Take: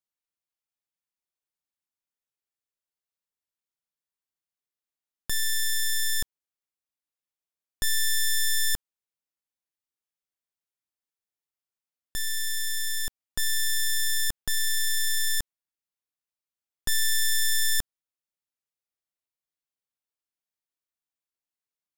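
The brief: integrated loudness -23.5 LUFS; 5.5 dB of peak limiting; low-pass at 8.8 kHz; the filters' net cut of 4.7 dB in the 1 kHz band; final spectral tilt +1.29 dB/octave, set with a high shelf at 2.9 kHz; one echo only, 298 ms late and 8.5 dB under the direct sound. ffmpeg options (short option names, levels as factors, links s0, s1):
-af "lowpass=8800,equalizer=f=1000:t=o:g=-7.5,highshelf=f=2900:g=7,alimiter=limit=0.106:level=0:latency=1,aecho=1:1:298:0.376,volume=1.58"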